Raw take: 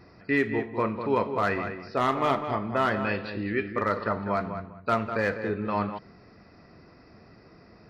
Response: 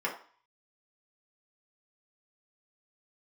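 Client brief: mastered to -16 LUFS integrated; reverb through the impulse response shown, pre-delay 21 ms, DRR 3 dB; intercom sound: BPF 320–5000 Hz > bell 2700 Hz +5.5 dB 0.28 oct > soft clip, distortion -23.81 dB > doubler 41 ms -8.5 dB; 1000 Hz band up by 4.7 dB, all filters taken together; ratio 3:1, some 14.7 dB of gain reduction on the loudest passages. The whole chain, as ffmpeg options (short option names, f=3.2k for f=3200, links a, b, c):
-filter_complex "[0:a]equalizer=f=1k:t=o:g=6,acompressor=threshold=-38dB:ratio=3,asplit=2[a][b];[1:a]atrim=start_sample=2205,adelay=21[c];[b][c]afir=irnorm=-1:irlink=0,volume=-10.5dB[d];[a][d]amix=inputs=2:normalize=0,highpass=320,lowpass=5k,equalizer=f=2.7k:t=o:w=0.28:g=5.5,asoftclip=threshold=-23.5dB,asplit=2[e][f];[f]adelay=41,volume=-8.5dB[g];[e][g]amix=inputs=2:normalize=0,volume=21dB"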